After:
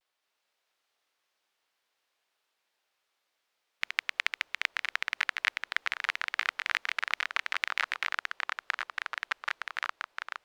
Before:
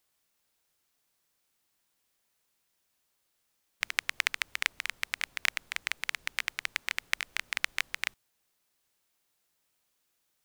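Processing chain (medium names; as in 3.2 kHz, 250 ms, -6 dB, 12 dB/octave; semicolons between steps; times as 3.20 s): ever faster or slower copies 221 ms, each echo -3 st, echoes 3; three-band isolator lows -19 dB, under 370 Hz, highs -15 dB, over 4.9 kHz; vibrato 0.31 Hz 30 cents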